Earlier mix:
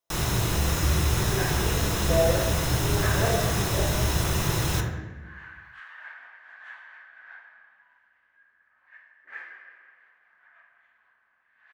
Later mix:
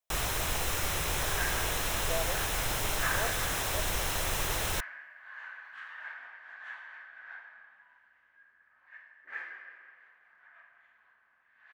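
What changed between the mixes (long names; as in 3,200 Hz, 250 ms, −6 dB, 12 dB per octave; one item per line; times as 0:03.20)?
speech −4.0 dB
reverb: off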